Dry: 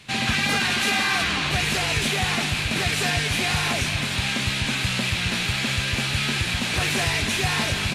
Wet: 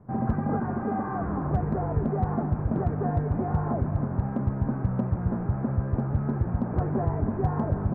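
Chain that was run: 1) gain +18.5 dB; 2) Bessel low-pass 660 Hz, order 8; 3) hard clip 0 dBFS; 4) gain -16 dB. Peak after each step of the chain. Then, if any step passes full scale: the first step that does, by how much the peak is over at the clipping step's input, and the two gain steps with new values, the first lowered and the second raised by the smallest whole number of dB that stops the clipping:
+5.5, +4.0, 0.0, -16.0 dBFS; step 1, 4.0 dB; step 1 +14.5 dB, step 4 -12 dB

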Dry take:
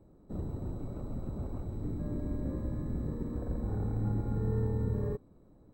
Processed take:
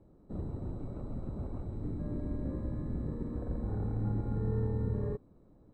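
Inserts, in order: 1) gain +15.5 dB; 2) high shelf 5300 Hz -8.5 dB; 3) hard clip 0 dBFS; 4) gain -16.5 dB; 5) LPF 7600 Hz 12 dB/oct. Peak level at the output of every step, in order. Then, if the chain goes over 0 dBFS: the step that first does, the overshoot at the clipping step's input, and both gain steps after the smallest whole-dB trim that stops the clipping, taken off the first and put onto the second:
-5.5, -5.5, -5.5, -22.0, -22.0 dBFS; no overload

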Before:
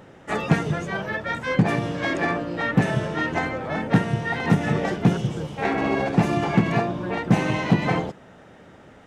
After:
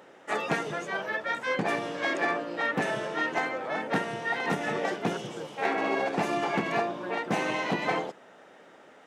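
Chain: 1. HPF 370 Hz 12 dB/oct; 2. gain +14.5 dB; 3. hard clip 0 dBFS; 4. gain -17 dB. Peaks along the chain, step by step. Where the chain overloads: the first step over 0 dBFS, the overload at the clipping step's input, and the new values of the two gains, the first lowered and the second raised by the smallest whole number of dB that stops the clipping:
-9.5, +5.0, 0.0, -17.0 dBFS; step 2, 5.0 dB; step 2 +9.5 dB, step 4 -12 dB

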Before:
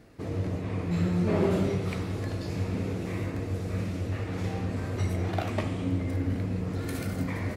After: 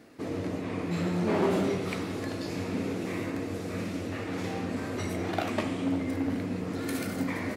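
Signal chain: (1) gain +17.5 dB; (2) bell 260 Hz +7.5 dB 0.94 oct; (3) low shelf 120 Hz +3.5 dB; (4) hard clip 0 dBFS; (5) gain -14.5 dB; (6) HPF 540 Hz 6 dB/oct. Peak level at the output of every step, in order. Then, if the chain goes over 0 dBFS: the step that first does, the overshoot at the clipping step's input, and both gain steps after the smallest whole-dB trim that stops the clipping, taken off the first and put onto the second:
+3.5, +6.5, +7.0, 0.0, -14.5, -13.5 dBFS; step 1, 7.0 dB; step 1 +10.5 dB, step 5 -7.5 dB

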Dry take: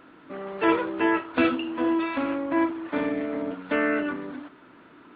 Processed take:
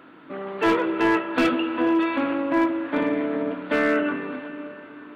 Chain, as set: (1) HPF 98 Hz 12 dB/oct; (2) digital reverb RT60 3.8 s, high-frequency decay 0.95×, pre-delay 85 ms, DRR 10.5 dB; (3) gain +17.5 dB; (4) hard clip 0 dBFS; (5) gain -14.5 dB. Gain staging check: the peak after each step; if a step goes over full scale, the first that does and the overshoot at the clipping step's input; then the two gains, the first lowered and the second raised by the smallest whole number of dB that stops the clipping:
-8.5, -8.5, +9.0, 0.0, -14.5 dBFS; step 3, 9.0 dB; step 3 +8.5 dB, step 5 -5.5 dB

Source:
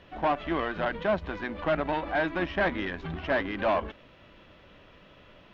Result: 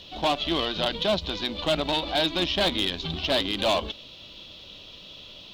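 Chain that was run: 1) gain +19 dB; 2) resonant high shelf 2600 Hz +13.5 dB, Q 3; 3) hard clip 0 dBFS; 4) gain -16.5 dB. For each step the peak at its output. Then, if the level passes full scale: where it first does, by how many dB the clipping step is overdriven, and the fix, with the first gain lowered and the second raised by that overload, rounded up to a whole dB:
+4.0, +6.5, 0.0, -16.5 dBFS; step 1, 6.5 dB; step 1 +12 dB, step 4 -9.5 dB

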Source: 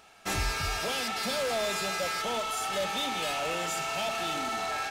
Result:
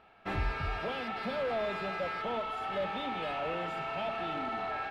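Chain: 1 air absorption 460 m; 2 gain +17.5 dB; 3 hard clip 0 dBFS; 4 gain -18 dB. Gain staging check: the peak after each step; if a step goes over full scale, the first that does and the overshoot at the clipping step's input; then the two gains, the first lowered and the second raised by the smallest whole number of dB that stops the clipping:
-21.5, -4.0, -4.0, -22.0 dBFS; no overload

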